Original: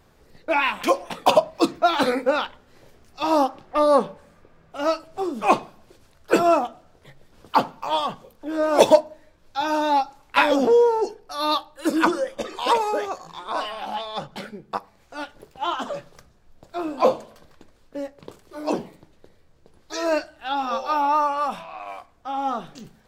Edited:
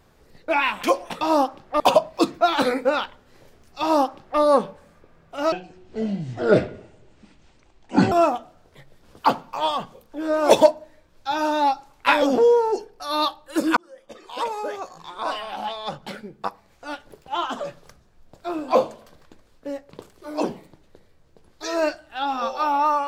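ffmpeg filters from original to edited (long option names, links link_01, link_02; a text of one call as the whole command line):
ffmpeg -i in.wav -filter_complex "[0:a]asplit=6[link_01][link_02][link_03][link_04][link_05][link_06];[link_01]atrim=end=1.212[link_07];[link_02]atrim=start=3.218:end=3.812[link_08];[link_03]atrim=start=1.208:end=4.934[link_09];[link_04]atrim=start=4.93:end=6.41,asetpts=PTS-STARTPTS,asetrate=25137,aresample=44100,atrim=end_sample=114505,asetpts=PTS-STARTPTS[link_10];[link_05]atrim=start=6.406:end=12.06,asetpts=PTS-STARTPTS,afade=type=out:start_time=5.65:duration=0.004:curve=hsin[link_11];[link_06]atrim=start=12.06,asetpts=PTS-STARTPTS,afade=type=in:duration=1.54[link_12];[link_07][link_08]acrossfade=duration=0.004:curve1=hsin:curve2=hsin[link_13];[link_13][link_09]acrossfade=duration=0.004:curve1=hsin:curve2=hsin[link_14];[link_14][link_10]acrossfade=duration=0.004:curve1=hsin:curve2=hsin[link_15];[link_11][link_12]concat=n=2:v=0:a=1[link_16];[link_15][link_16]acrossfade=duration=0.004:curve1=hsin:curve2=hsin" out.wav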